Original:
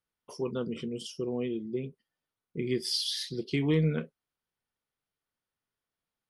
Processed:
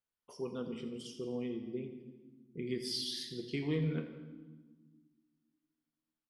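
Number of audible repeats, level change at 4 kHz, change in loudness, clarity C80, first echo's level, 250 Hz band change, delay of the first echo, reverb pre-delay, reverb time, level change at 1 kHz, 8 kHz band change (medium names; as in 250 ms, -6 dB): 3, -7.0 dB, -7.0 dB, 8.5 dB, -13.5 dB, -6.0 dB, 83 ms, 3 ms, 1.4 s, -7.0 dB, -7.5 dB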